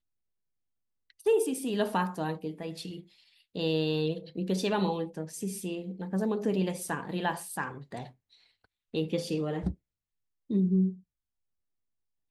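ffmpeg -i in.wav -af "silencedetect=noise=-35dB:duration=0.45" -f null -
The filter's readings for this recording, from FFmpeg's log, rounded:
silence_start: 0.00
silence_end: 1.26 | silence_duration: 1.26
silence_start: 3.00
silence_end: 3.56 | silence_duration: 0.56
silence_start: 8.06
silence_end: 8.94 | silence_duration: 0.88
silence_start: 9.72
silence_end: 10.50 | silence_duration: 0.79
silence_start: 10.91
silence_end: 12.31 | silence_duration: 1.40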